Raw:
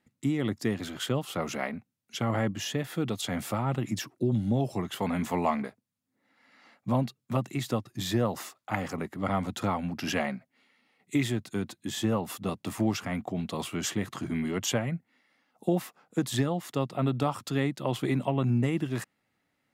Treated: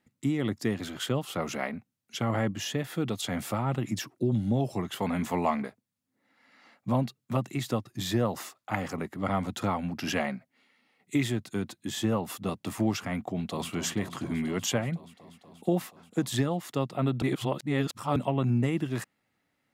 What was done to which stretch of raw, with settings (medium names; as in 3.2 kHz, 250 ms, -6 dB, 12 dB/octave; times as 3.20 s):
13.22–13.69 s: echo throw 240 ms, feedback 85%, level -12.5 dB
17.22–18.16 s: reverse